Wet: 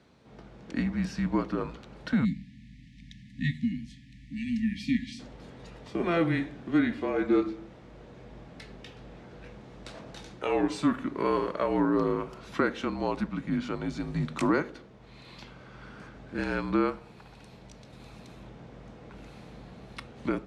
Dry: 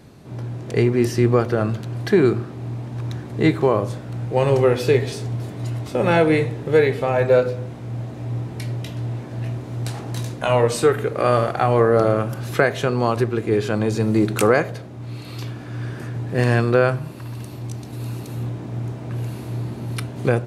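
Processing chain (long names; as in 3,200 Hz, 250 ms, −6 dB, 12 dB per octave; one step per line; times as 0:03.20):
frequency shifter −170 Hz
time-frequency box erased 0:02.25–0:05.20, 290–1,700 Hz
band-pass filter 140–5,200 Hz
level −8.5 dB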